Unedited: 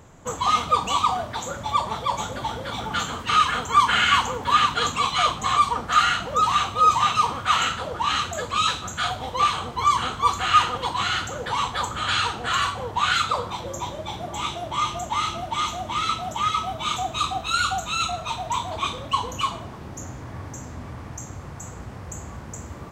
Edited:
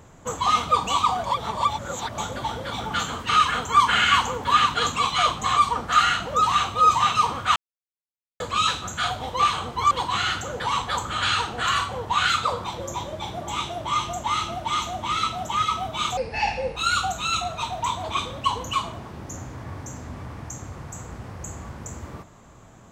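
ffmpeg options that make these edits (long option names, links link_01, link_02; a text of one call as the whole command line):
ffmpeg -i in.wav -filter_complex "[0:a]asplit=8[link_01][link_02][link_03][link_04][link_05][link_06][link_07][link_08];[link_01]atrim=end=1.242[link_09];[link_02]atrim=start=1.238:end=2.182,asetpts=PTS-STARTPTS,areverse[link_10];[link_03]atrim=start=2.178:end=7.56,asetpts=PTS-STARTPTS,afade=type=out:start_time=5.378:duration=0.004:curve=hsin[link_11];[link_04]atrim=start=7.56:end=8.4,asetpts=PTS-STARTPTS,volume=0[link_12];[link_05]atrim=start=8.4:end=9.912,asetpts=PTS-STARTPTS,afade=type=in:duration=0.004:curve=hsin[link_13];[link_06]atrim=start=10.768:end=17.034[link_14];[link_07]atrim=start=17.03:end=17.44,asetpts=PTS-STARTPTS,asetrate=30429,aresample=44100,atrim=end_sample=26204,asetpts=PTS-STARTPTS[link_15];[link_08]atrim=start=17.436[link_16];[link_09][link_10]acrossfade=duration=0.004:curve1=hsin:curve2=hsin[link_17];[link_11][link_12][link_13]concat=n=3:v=0:a=1[link_18];[link_17][link_18]acrossfade=duration=0.004:curve1=hsin:curve2=hsin[link_19];[link_19][link_14]acrossfade=duration=0.004:curve1=hsin:curve2=hsin[link_20];[link_20][link_15]acrossfade=duration=0.004:curve1=hsin:curve2=hsin[link_21];[link_21][link_16]acrossfade=duration=0.004:curve1=hsin:curve2=hsin" out.wav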